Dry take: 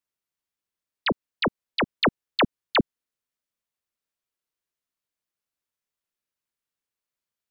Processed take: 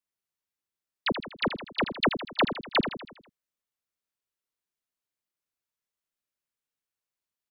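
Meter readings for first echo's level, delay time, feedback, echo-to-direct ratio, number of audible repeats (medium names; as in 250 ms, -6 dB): -9.0 dB, 81 ms, 50%, -7.5 dB, 5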